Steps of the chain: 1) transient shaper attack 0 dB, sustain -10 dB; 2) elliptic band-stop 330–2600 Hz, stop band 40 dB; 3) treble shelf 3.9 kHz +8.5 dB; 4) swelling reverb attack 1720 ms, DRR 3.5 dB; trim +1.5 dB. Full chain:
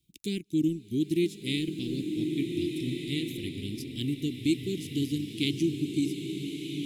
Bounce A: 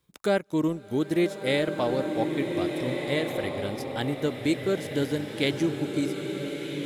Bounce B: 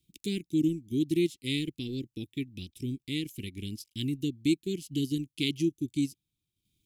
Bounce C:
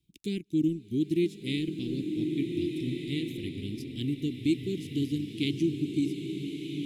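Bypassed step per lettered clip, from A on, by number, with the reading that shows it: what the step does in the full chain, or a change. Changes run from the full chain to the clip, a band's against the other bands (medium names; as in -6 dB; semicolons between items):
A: 2, 500 Hz band +8.5 dB; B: 4, loudness change -1.0 LU; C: 3, 4 kHz band -3.5 dB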